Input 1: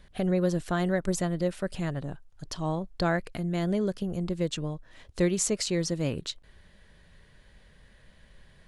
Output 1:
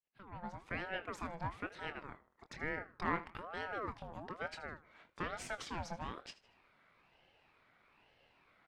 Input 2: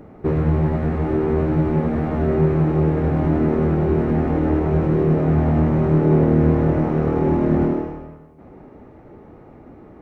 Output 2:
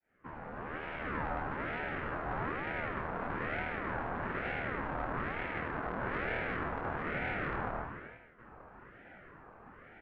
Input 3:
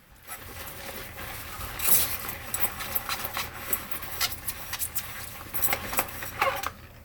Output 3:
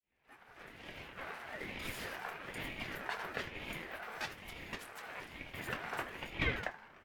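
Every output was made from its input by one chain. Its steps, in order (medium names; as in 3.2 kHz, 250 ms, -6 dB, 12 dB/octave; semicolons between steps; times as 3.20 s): fade-in on the opening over 1.22 s; dynamic bell 1 kHz, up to -3 dB, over -35 dBFS, Q 1.2; valve stage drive 23 dB, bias 0.45; band-pass filter 1.1 kHz, Q 1.5; doubling 24 ms -10.5 dB; on a send: feedback delay 78 ms, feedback 40%, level -17.5 dB; on the sum: ring modulator with a swept carrier 730 Hz, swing 55%, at 1.1 Hz; trim +3.5 dB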